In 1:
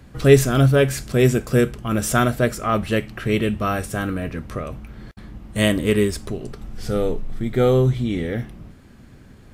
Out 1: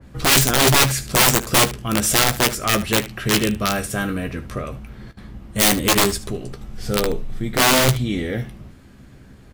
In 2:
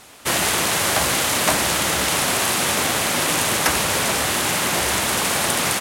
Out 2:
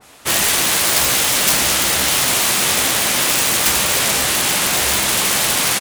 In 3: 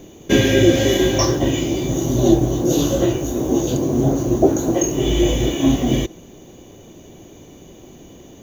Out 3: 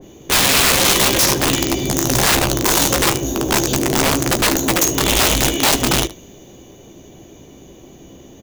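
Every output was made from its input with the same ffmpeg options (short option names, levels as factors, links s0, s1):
-af "aeval=exprs='(mod(3.98*val(0)+1,2)-1)/3.98':c=same,aecho=1:1:15|75:0.355|0.15,adynamicequalizer=threshold=0.02:dfrequency=2000:dqfactor=0.7:tfrequency=2000:tqfactor=0.7:attack=5:release=100:ratio=0.375:range=2.5:mode=boostabove:tftype=highshelf"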